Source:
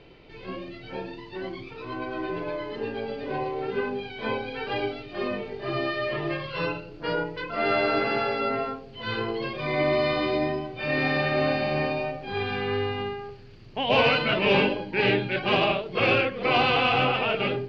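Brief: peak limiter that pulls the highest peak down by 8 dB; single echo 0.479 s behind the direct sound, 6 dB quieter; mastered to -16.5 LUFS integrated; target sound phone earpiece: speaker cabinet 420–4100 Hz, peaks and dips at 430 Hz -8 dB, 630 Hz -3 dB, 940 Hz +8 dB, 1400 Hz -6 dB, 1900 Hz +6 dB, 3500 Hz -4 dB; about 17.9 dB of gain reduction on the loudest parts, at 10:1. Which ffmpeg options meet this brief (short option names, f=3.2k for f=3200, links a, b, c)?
-af "acompressor=threshold=-36dB:ratio=10,alimiter=level_in=7.5dB:limit=-24dB:level=0:latency=1,volume=-7.5dB,highpass=420,equalizer=f=430:t=q:w=4:g=-8,equalizer=f=630:t=q:w=4:g=-3,equalizer=f=940:t=q:w=4:g=8,equalizer=f=1.4k:t=q:w=4:g=-6,equalizer=f=1.9k:t=q:w=4:g=6,equalizer=f=3.5k:t=q:w=4:g=-4,lowpass=f=4.1k:w=0.5412,lowpass=f=4.1k:w=1.3066,aecho=1:1:479:0.501,volume=25dB"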